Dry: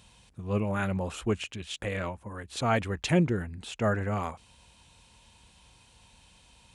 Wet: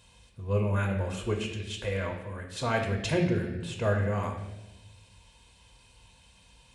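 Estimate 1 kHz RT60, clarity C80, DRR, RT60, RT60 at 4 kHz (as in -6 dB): 0.90 s, 8.0 dB, 1.5 dB, 1.1 s, 1.0 s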